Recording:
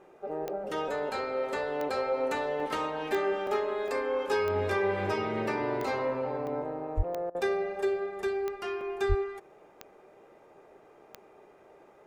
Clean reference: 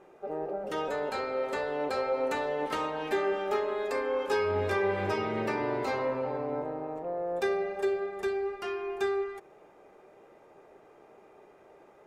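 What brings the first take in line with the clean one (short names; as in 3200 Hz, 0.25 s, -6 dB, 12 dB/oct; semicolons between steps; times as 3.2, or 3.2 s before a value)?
de-click; de-plosive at 6.96/9.08; interpolate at 2.6/3.47/3.88/6.47/8.81, 2.3 ms; interpolate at 7.3, 47 ms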